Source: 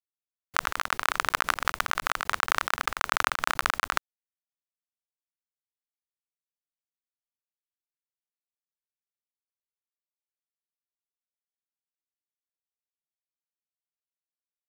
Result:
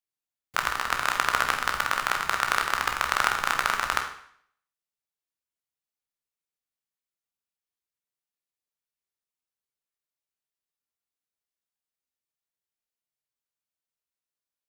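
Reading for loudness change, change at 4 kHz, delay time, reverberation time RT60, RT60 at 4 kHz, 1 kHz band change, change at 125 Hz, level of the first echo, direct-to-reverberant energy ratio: +2.0 dB, +2.0 dB, none, 0.60 s, 0.60 s, +2.0 dB, +2.5 dB, none, 3.0 dB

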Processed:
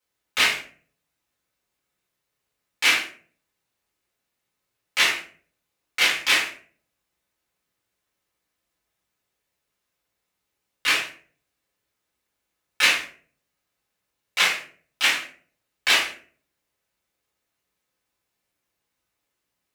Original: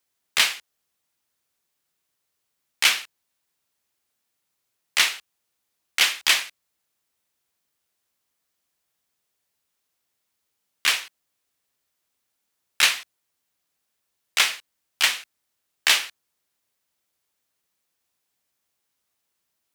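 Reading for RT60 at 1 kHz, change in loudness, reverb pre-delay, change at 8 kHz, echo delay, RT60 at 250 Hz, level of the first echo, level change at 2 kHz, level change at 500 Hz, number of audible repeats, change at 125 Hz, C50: 0.40 s, 0.0 dB, 3 ms, -3.5 dB, none, 0.60 s, none, +2.0 dB, +5.0 dB, none, n/a, 6.5 dB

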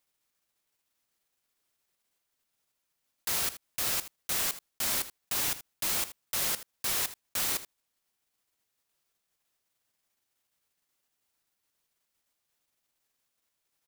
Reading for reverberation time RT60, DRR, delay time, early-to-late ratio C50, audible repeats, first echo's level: none, none, 79 ms, none, 1, -14.5 dB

